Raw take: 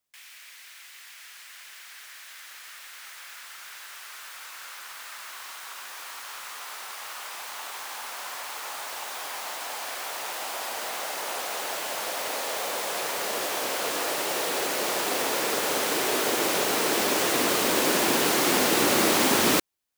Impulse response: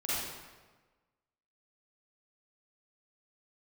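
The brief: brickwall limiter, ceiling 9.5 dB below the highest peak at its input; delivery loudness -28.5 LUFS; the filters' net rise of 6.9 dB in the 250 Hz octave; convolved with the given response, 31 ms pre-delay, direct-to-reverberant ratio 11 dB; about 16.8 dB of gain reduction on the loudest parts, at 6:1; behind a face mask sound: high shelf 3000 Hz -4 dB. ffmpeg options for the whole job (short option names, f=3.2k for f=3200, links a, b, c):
-filter_complex "[0:a]equalizer=f=250:t=o:g=9,acompressor=threshold=-34dB:ratio=6,alimiter=level_in=8dB:limit=-24dB:level=0:latency=1,volume=-8dB,asplit=2[a][b];[1:a]atrim=start_sample=2205,adelay=31[c];[b][c]afir=irnorm=-1:irlink=0,volume=-17.5dB[d];[a][d]amix=inputs=2:normalize=0,highshelf=f=3k:g=-4,volume=13.5dB"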